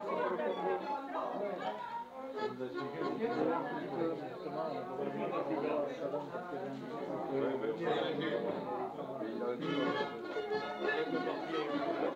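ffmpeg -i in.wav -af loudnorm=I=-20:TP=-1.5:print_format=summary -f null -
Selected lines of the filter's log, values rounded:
Input Integrated:    -37.4 LUFS
Input True Peak:     -21.1 dBTP
Input LRA:             1.9 LU
Input Threshold:     -47.4 LUFS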